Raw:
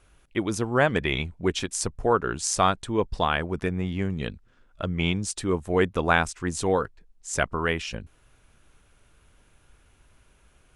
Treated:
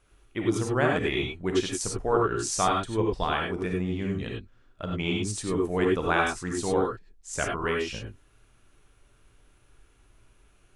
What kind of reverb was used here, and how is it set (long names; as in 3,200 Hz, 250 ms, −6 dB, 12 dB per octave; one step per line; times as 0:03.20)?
reverb whose tail is shaped and stops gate 120 ms rising, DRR −0.5 dB
level −5.5 dB